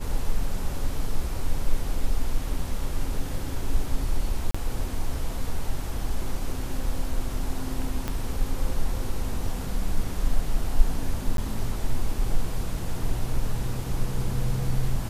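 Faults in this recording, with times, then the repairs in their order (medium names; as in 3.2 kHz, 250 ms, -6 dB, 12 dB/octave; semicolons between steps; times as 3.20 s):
4.51–4.54 s: dropout 35 ms
8.08 s: pop -14 dBFS
11.37–11.38 s: dropout 12 ms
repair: de-click; interpolate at 4.51 s, 35 ms; interpolate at 11.37 s, 12 ms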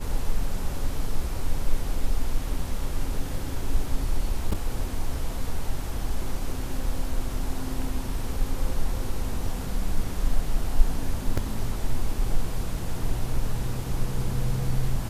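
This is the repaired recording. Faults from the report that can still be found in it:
8.08 s: pop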